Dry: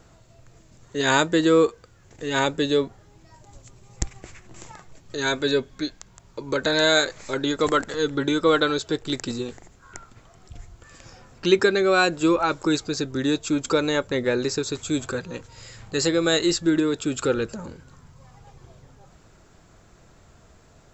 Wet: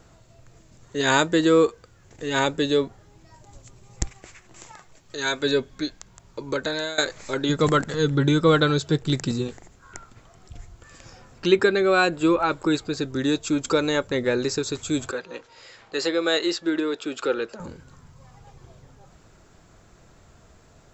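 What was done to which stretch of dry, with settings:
4.12–5.43 s: bass shelf 450 Hz -7.5 dB
6.44–6.98 s: fade out, to -20 dB
7.49–9.48 s: peaking EQ 150 Hz +13.5 dB
11.47–13.02 s: peaking EQ 5.9 kHz -9.5 dB 0.62 oct
15.11–17.60 s: three-band isolator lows -21 dB, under 290 Hz, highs -23 dB, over 5.8 kHz

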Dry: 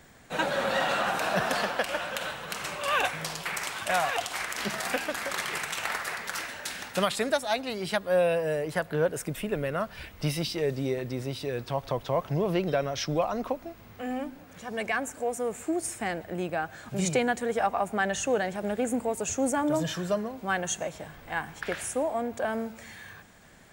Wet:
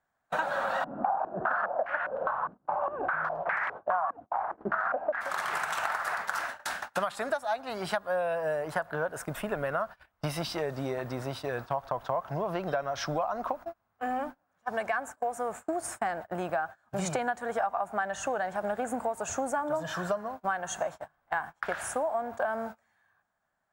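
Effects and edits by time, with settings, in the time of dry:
0.84–5.21 s: step-sequenced low-pass 4.9 Hz 270–1900 Hz
whole clip: gate -37 dBFS, range -30 dB; high-order bell 1 kHz +12.5 dB; compression 6:1, threshold -25 dBFS; trim -2.5 dB

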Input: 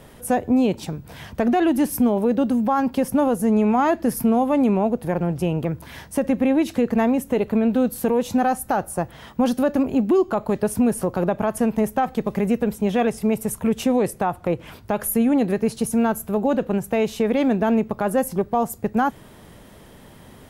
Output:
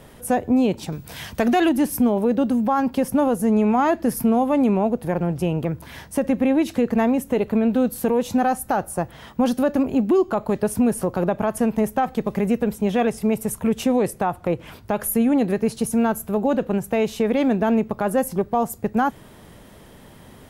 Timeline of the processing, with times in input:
0.92–1.69 s: treble shelf 2.1 kHz +10 dB

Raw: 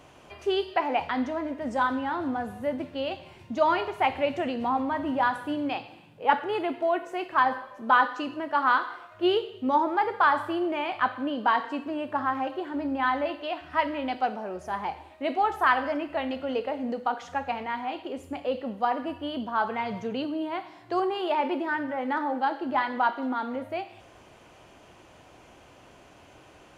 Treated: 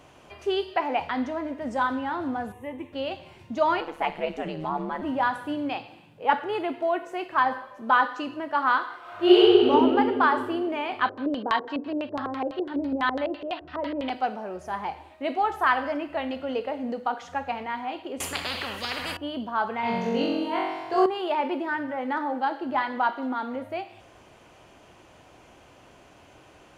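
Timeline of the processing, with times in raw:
2.52–2.93 s: static phaser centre 960 Hz, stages 8
3.80–5.02 s: ring modulator 76 Hz
9.00–9.69 s: reverb throw, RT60 2.6 s, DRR -9.5 dB
11.01–14.10 s: LFO low-pass square 6 Hz 450–4000 Hz
18.20–19.17 s: spectrum-flattening compressor 10:1
19.81–21.06 s: flutter echo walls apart 3.7 m, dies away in 1.2 s

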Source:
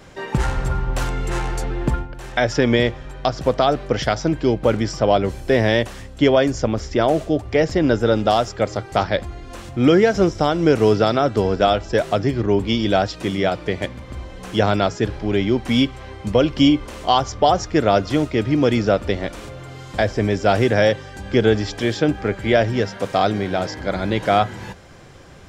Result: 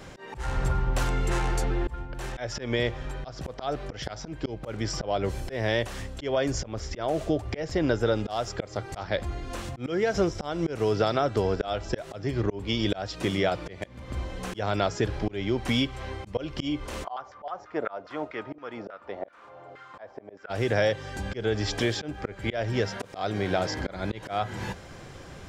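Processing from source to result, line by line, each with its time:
17.03–20.49 s: LFO band-pass saw down 7.4 Hz -> 1.3 Hz 570–1600 Hz
whole clip: dynamic bell 230 Hz, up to -5 dB, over -29 dBFS, Q 1.5; slow attack 351 ms; compression 2.5:1, threshold -23 dBFS

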